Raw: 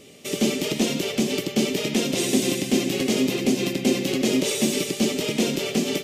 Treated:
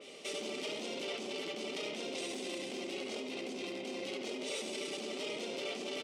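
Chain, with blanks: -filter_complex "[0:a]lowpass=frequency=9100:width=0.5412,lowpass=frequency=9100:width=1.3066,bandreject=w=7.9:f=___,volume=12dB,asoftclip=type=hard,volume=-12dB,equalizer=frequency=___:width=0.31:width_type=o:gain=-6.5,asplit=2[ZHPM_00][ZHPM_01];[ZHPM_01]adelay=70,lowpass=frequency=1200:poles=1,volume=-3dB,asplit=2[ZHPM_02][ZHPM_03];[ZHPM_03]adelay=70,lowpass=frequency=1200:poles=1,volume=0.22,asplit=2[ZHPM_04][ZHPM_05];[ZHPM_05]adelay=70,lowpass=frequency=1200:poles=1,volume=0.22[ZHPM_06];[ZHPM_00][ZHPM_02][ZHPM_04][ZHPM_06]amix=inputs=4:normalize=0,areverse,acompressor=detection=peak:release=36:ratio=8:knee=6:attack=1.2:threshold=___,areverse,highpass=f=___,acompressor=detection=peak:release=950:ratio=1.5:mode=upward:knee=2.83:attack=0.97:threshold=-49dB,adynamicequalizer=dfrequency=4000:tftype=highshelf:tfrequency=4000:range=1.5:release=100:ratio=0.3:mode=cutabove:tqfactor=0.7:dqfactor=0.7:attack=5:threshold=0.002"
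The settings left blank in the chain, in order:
1700, 7000, -33dB, 430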